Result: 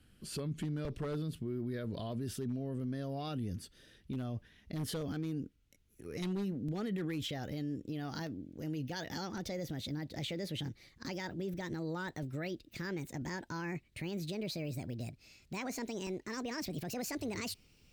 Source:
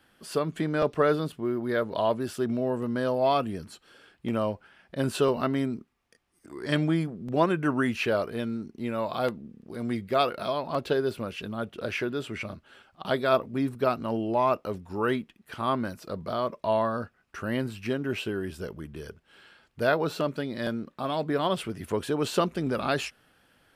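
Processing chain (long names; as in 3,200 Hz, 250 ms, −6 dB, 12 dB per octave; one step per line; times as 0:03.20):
gliding playback speed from 95% → 170%
guitar amp tone stack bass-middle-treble 10-0-1
wave folding −38.5 dBFS
brickwall limiter −48 dBFS, peak gain reduction 9.5 dB
level +18 dB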